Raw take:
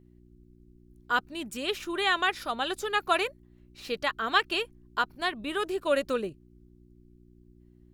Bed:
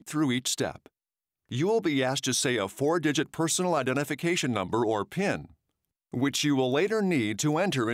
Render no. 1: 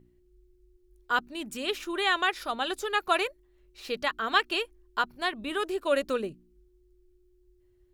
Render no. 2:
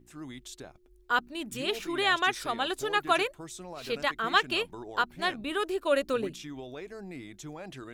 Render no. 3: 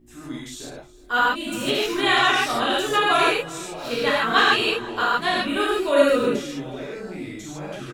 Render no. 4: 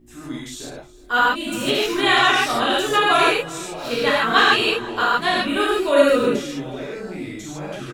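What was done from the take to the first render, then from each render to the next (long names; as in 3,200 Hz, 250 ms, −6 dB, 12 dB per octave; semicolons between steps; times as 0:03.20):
hum removal 60 Hz, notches 5
mix in bed −16.5 dB
repeating echo 365 ms, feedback 48%, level −21 dB; reverb whose tail is shaped and stops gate 180 ms flat, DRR −8 dB
level +2.5 dB; brickwall limiter −3 dBFS, peak gain reduction 1 dB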